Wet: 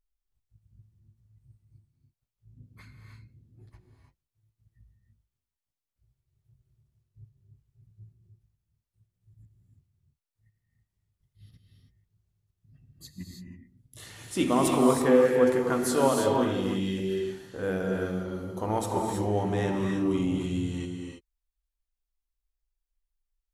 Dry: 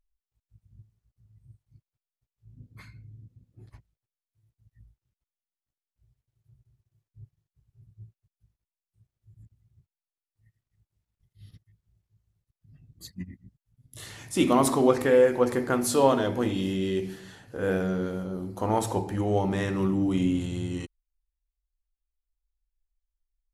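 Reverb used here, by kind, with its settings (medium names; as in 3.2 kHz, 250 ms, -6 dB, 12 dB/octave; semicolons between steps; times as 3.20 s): gated-style reverb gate 350 ms rising, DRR 1.5 dB; trim -3.5 dB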